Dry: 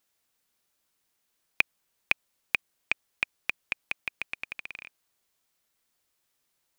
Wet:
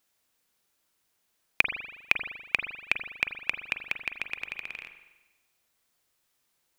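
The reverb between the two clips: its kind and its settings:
spring reverb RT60 1.1 s, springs 40 ms, chirp 50 ms, DRR 7 dB
level +1.5 dB

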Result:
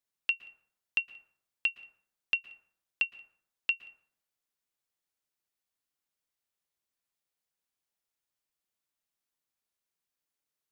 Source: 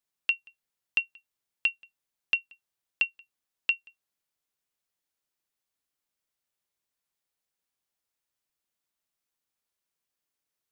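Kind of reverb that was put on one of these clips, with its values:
dense smooth reverb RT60 0.68 s, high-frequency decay 0.4×, pre-delay 105 ms, DRR 17 dB
level −3 dB

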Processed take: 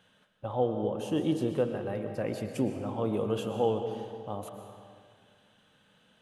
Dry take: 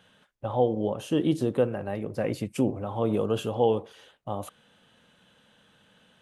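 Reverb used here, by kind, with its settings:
comb and all-pass reverb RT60 2 s, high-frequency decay 0.8×, pre-delay 85 ms, DRR 6 dB
level −4.5 dB

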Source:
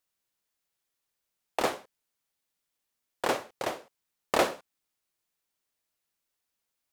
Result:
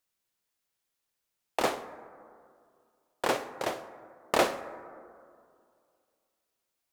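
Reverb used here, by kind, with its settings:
dense smooth reverb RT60 2.3 s, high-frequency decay 0.3×, DRR 11.5 dB

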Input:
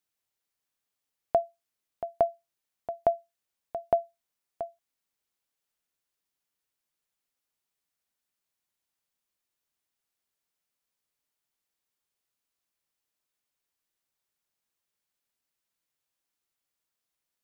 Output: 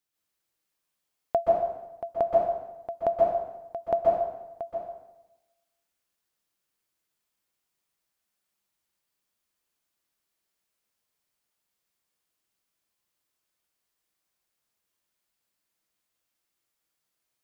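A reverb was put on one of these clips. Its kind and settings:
dense smooth reverb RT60 1 s, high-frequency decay 0.8×, pre-delay 115 ms, DRR −4 dB
level −1 dB

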